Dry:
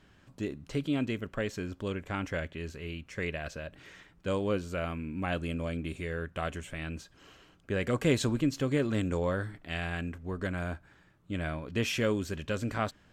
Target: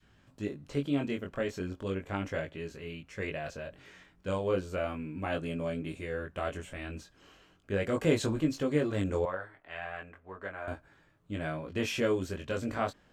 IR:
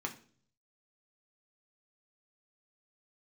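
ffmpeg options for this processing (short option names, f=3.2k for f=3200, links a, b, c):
-filter_complex "[0:a]adynamicequalizer=threshold=0.00891:dfrequency=580:dqfactor=0.74:tfrequency=580:tqfactor=0.74:attack=5:release=100:ratio=0.375:range=2.5:mode=boostabove:tftype=bell,flanger=delay=19:depth=3:speed=0.36,asettb=1/sr,asplit=3[a][b][c];[a]atrim=end=9.254[d];[b]atrim=start=9.25:end=10.68,asetpts=PTS-STARTPTS,afade=t=in:d=0.004:c=qsin,afade=t=out:st=1.426:d=0.004:c=qsin,acrossover=split=530 2600:gain=0.158 1 0.141[e][f][g];[e][f][g]amix=inputs=3:normalize=0[h];[c]atrim=start=10.676[i];[d][h]acrossfade=d=0.004:c1=hsin:c2=qsin[j];[j][i]acrossfade=d=0.004:c1=qsin:c2=hsin"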